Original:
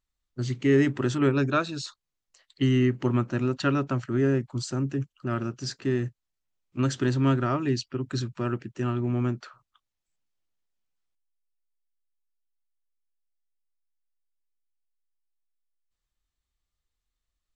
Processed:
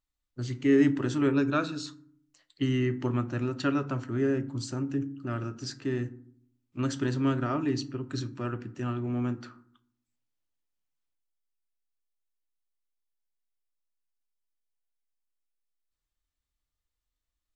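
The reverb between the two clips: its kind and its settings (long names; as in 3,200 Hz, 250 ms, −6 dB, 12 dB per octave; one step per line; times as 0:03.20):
feedback delay network reverb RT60 0.57 s, low-frequency decay 1.55×, high-frequency decay 0.5×, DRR 10 dB
level −4 dB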